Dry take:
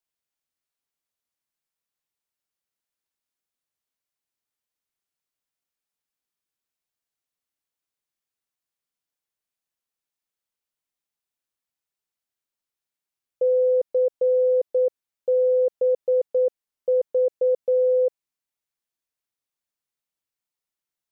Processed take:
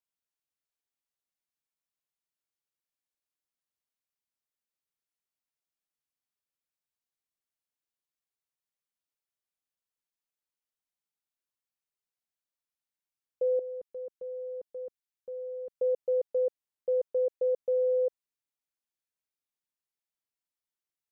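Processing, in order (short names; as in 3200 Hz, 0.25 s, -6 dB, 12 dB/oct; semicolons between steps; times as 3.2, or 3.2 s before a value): 13.59–15.78 bell 550 Hz -12 dB 1.6 oct; gain -7 dB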